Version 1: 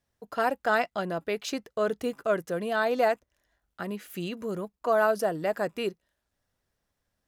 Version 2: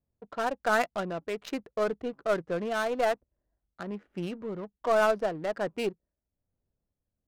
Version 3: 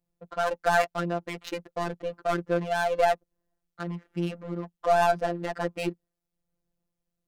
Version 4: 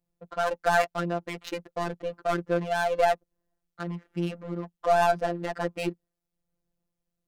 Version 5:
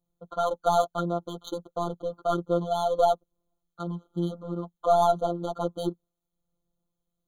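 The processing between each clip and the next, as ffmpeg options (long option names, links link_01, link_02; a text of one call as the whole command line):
ffmpeg -i in.wav -af "aeval=exprs='0.282*(cos(1*acos(clip(val(0)/0.282,-1,1)))-cos(1*PI/2))+0.0224*(cos(4*acos(clip(val(0)/0.282,-1,1)))-cos(4*PI/2))+0.00562*(cos(6*acos(clip(val(0)/0.282,-1,1)))-cos(6*PI/2))+0.002*(cos(8*acos(clip(val(0)/0.282,-1,1)))-cos(8*PI/2))':channel_layout=same,tremolo=f=1.2:d=0.34,adynamicsmooth=sensitivity=8:basefreq=550" out.wav
ffmpeg -i in.wav -af "afftfilt=real='hypot(re,im)*cos(PI*b)':imag='0':win_size=1024:overlap=0.75,volume=6dB" out.wav
ffmpeg -i in.wav -af anull out.wav
ffmpeg -i in.wav -af "afftfilt=real='re*eq(mod(floor(b*sr/1024/1500),2),0)':imag='im*eq(mod(floor(b*sr/1024/1500),2),0)':win_size=1024:overlap=0.75,volume=1dB" out.wav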